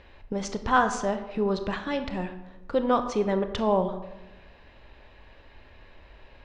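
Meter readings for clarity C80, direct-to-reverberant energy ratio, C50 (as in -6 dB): 12.0 dB, 8.0 dB, 10.0 dB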